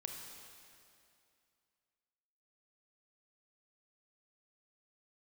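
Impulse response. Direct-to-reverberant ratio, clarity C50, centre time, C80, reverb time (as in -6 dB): 2.0 dB, 3.0 dB, 82 ms, 4.0 dB, 2.5 s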